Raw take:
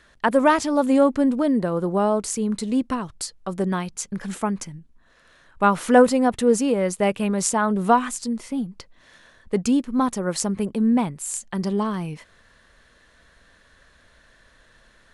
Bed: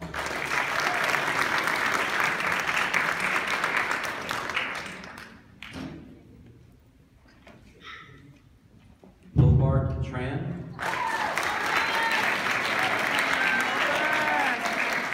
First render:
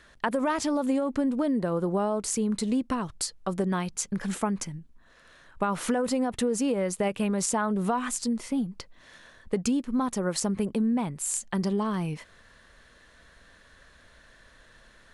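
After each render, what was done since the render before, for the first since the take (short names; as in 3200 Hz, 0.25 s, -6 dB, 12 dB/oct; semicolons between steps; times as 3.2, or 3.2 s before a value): limiter -12 dBFS, peak gain reduction 8.5 dB; compressor, threshold -23 dBFS, peak gain reduction 7.5 dB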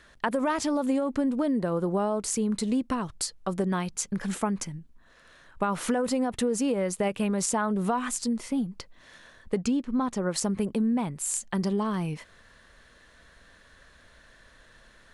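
9.59–10.34 air absorption 62 m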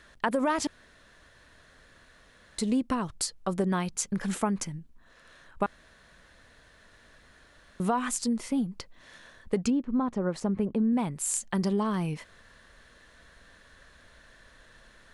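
0.67–2.58 room tone; 5.66–7.8 room tone; 9.7–10.93 LPF 1200 Hz 6 dB/oct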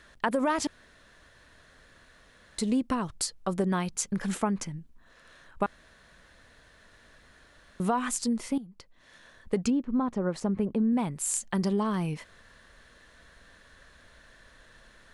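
4.37–4.78 high shelf 8500 Hz -8.5 dB; 8.58–9.57 fade in, from -16.5 dB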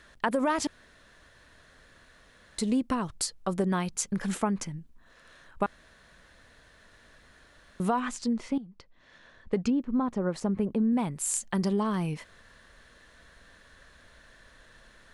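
8–9.78 air absorption 93 m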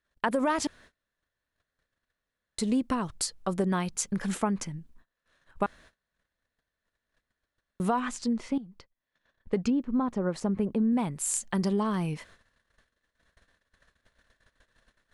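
gate -52 dBFS, range -29 dB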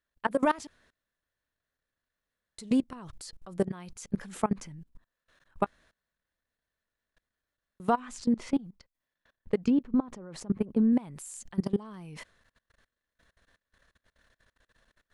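in parallel at -2 dB: limiter -23.5 dBFS, peak gain reduction 11 dB; on the sum: level quantiser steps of 22 dB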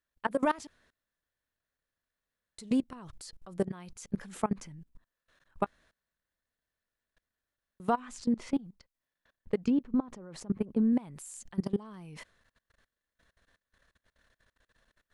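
gain -2.5 dB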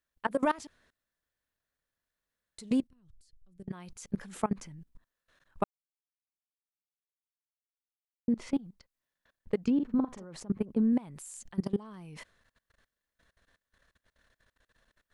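2.87–3.68 passive tone stack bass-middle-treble 10-0-1; 5.64–8.28 mute; 9.75–10.24 doubler 46 ms -5 dB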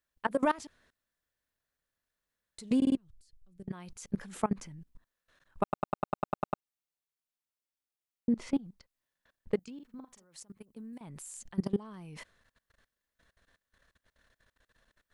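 2.77 stutter in place 0.05 s, 4 plays; 5.63 stutter in place 0.10 s, 10 plays; 9.59–11.01 pre-emphasis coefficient 0.9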